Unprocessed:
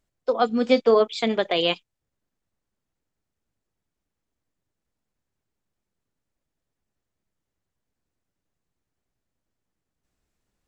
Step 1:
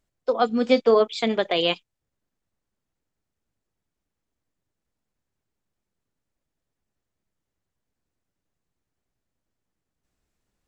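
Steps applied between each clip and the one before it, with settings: nothing audible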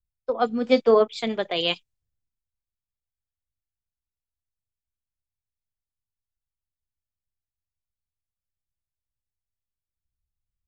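three-band expander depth 70%; gain -2.5 dB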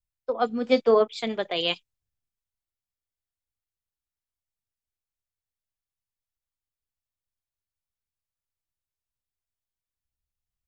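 low shelf 170 Hz -3.5 dB; gain -1.5 dB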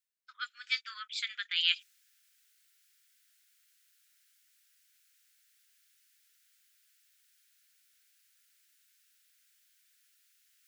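steep high-pass 1400 Hz 72 dB/oct; reverse; upward compressor, threshold -49 dBFS; reverse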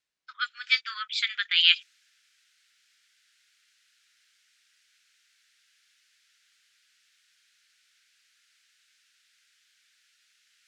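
LPF 5400 Hz 12 dB/oct; gain +9 dB

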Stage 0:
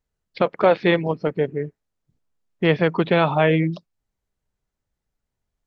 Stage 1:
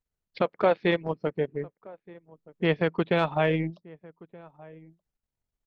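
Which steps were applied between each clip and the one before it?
transient shaper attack +1 dB, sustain -11 dB; outdoor echo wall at 210 m, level -22 dB; gain -6.5 dB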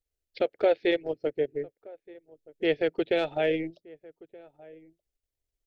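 fixed phaser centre 440 Hz, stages 4; gain +1 dB

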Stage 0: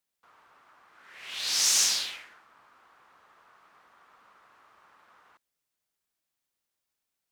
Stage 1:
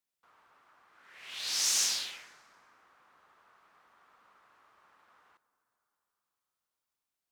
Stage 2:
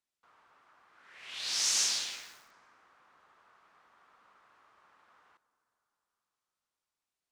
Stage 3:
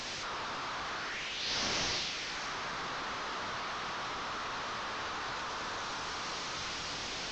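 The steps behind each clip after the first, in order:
reverb RT60 4.6 s, pre-delay 8 ms, DRR 15.5 dB; gain -5 dB
LPF 9200 Hz 12 dB/oct; lo-fi delay 0.166 s, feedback 35%, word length 8-bit, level -11 dB
delta modulation 32 kbps, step -33 dBFS; AAC 32 kbps 22050 Hz

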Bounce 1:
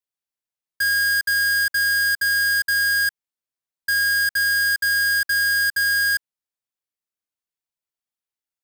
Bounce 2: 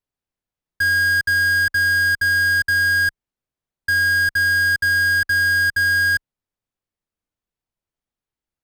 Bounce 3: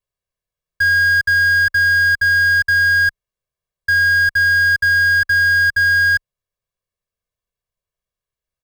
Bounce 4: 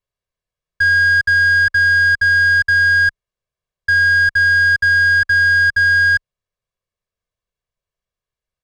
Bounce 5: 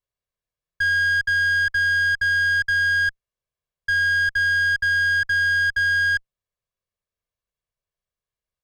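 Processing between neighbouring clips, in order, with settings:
tilt -3 dB/oct; gain +5 dB
comb 1.8 ms, depth 97%; gain -2 dB
air absorption 50 m; gain +1.5 dB
tube stage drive 12 dB, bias 0.25; gain -4 dB

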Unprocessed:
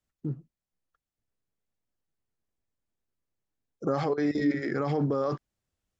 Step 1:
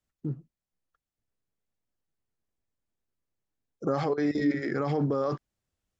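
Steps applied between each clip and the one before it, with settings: nothing audible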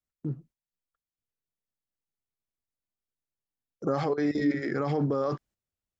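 gate -55 dBFS, range -10 dB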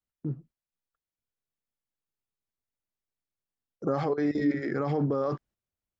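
high shelf 3100 Hz -7 dB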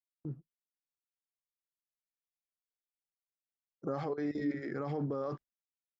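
gate -39 dBFS, range -20 dB; gain -8 dB

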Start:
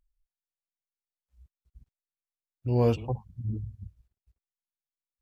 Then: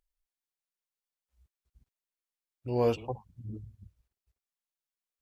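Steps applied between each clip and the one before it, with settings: tone controls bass -10 dB, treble 0 dB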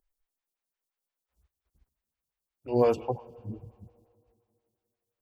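plate-style reverb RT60 2.5 s, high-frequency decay 0.8×, DRR 19.5 dB; photocell phaser 5.7 Hz; gain +6 dB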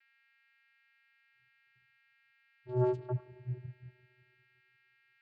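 whine 2300 Hz -54 dBFS; vocoder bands 8, square 125 Hz; gain -5 dB

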